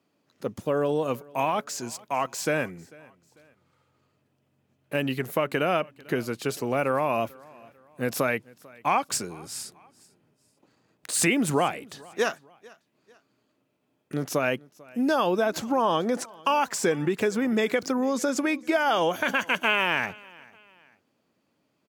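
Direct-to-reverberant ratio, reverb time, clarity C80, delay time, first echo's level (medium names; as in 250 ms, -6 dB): no reverb, no reverb, no reverb, 445 ms, -24.0 dB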